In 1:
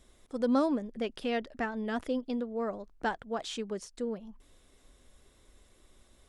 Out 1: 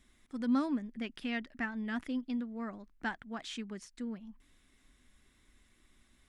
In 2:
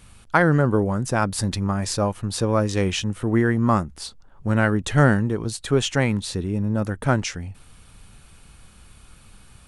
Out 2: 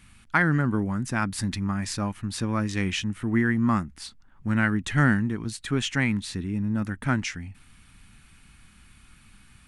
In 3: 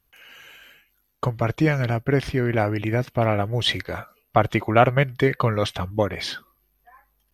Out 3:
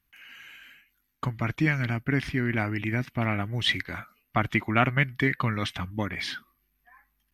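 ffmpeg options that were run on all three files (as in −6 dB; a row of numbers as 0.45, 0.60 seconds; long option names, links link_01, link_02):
-af "equalizer=frequency=250:width_type=o:width=1:gain=7,equalizer=frequency=500:width_type=o:width=1:gain=-11,equalizer=frequency=2000:width_type=o:width=1:gain=8,volume=-6dB"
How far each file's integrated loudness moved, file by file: −4.0, −4.0, −5.0 LU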